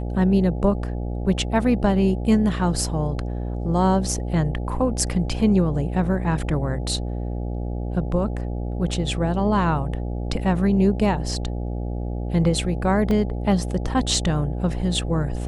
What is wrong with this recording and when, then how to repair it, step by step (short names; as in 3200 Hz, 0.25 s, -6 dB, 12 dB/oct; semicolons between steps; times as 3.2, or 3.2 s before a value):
buzz 60 Hz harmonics 14 -27 dBFS
13.11 gap 2 ms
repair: de-hum 60 Hz, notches 14; interpolate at 13.11, 2 ms